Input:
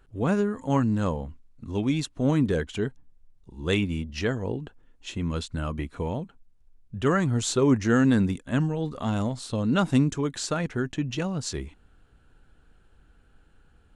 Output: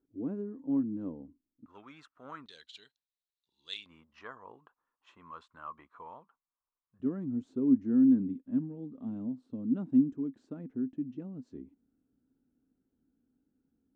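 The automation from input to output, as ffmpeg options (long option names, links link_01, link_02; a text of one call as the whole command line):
ffmpeg -i in.wav -af "asetnsamples=nb_out_samples=441:pad=0,asendcmd='1.66 bandpass f 1300;2.46 bandpass f 4000;3.86 bandpass f 1100;7 bandpass f 260',bandpass=frequency=290:width_type=q:width=6.4:csg=0" out.wav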